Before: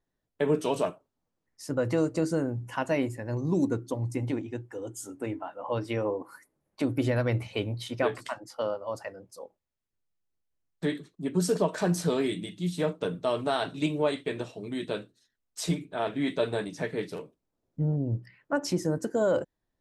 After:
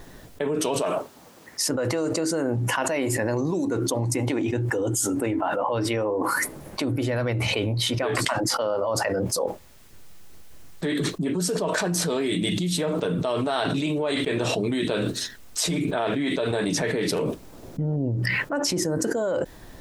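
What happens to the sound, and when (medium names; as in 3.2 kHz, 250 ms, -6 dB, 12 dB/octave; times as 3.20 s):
0.82–4.53 s: high-pass 320 Hz 6 dB/octave
whole clip: dynamic bell 150 Hz, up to -4 dB, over -39 dBFS, Q 0.72; level flattener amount 100%; trim -2 dB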